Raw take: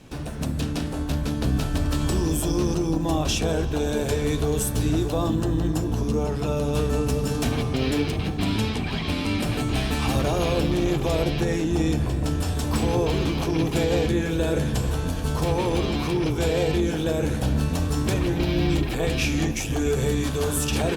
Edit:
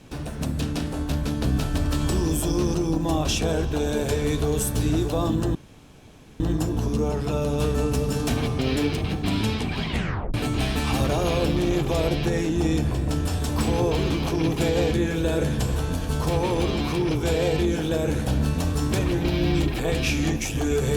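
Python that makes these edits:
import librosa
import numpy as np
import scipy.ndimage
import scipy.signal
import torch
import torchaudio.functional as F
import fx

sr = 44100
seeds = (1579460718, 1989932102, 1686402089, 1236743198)

y = fx.edit(x, sr, fx.insert_room_tone(at_s=5.55, length_s=0.85),
    fx.tape_stop(start_s=9.02, length_s=0.47), tone=tone)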